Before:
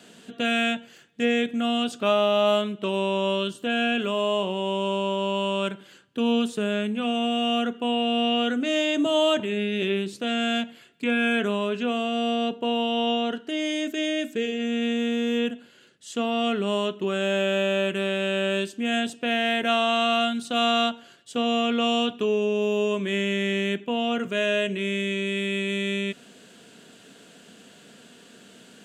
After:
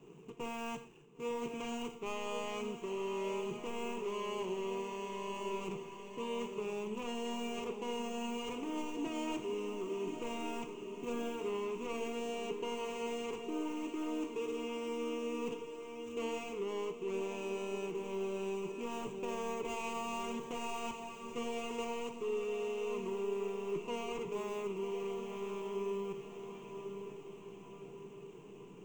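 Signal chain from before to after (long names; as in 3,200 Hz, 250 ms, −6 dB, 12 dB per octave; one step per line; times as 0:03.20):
running median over 41 samples
EQ curve with evenly spaced ripples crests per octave 0.71, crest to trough 17 dB
reversed playback
downward compressor 6 to 1, threshold −34 dBFS, peak gain reduction 16 dB
reversed playback
feedback delay with all-pass diffusion 1,024 ms, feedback 53%, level −7.5 dB
reverb whose tail is shaped and stops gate 140 ms flat, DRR 10.5 dB
level −3.5 dB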